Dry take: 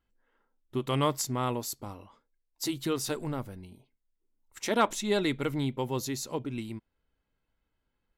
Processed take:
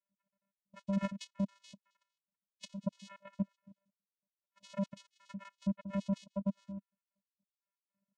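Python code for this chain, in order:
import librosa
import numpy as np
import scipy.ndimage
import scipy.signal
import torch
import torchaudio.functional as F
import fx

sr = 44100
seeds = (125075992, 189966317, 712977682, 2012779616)

y = fx.spec_dropout(x, sr, seeds[0], share_pct=75)
y = fx.level_steps(y, sr, step_db=12)
y = fx.vocoder(y, sr, bands=4, carrier='square', carrier_hz=197.0)
y = y * 10.0 ** (5.0 / 20.0)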